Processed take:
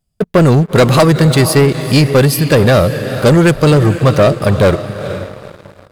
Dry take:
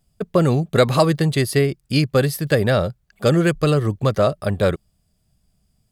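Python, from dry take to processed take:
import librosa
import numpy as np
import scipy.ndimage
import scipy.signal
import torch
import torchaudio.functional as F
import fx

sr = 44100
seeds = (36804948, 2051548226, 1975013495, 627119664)

y = fx.echo_diffused(x, sr, ms=461, feedback_pct=40, wet_db=-13.0)
y = fx.leveller(y, sr, passes=3)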